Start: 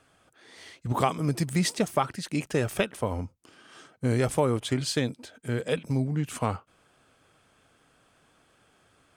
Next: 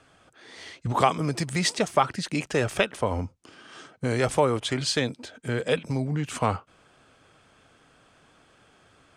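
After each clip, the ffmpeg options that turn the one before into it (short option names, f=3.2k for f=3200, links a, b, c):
-filter_complex "[0:a]lowpass=7.9k,acrossover=split=460[a][b];[a]alimiter=level_in=2.5dB:limit=-24dB:level=0:latency=1:release=218,volume=-2.5dB[c];[c][b]amix=inputs=2:normalize=0,volume=5dB"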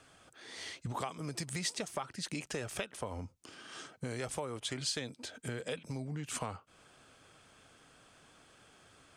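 -af "acompressor=threshold=-34dB:ratio=4,highshelf=f=4.5k:g=8.5,volume=-4dB"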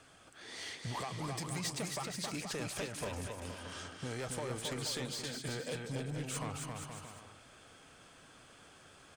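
-filter_complex "[0:a]asoftclip=type=tanh:threshold=-35dB,asplit=2[a][b];[b]aecho=0:1:270|472.5|624.4|738.3|823.7:0.631|0.398|0.251|0.158|0.1[c];[a][c]amix=inputs=2:normalize=0,volume=1dB"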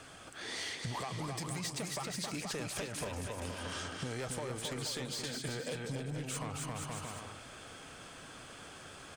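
-af "acompressor=threshold=-45dB:ratio=5,volume=8dB"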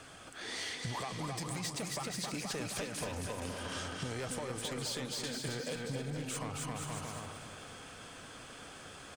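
-af "aecho=1:1:266|532|798|1064|1330:0.299|0.146|0.0717|0.0351|0.0172"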